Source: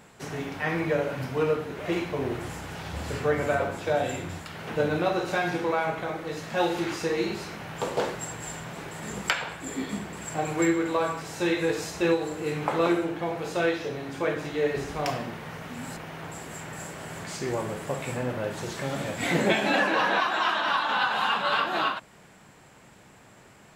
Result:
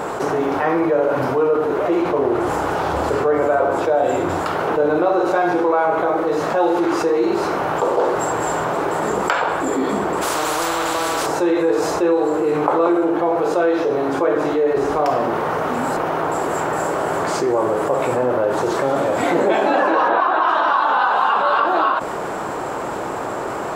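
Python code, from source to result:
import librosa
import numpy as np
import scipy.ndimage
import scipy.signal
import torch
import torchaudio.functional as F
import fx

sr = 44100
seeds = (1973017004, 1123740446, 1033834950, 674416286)

y = fx.doppler_dist(x, sr, depth_ms=0.19, at=(2.02, 2.47))
y = fx.spectral_comp(y, sr, ratio=10.0, at=(10.21, 11.25), fade=0.02)
y = fx.air_absorb(y, sr, metres=160.0, at=(20.08, 20.48))
y = fx.band_shelf(y, sr, hz=640.0, db=14.0, octaves=2.6)
y = fx.env_flatten(y, sr, amount_pct=70)
y = y * librosa.db_to_amplitude(-8.0)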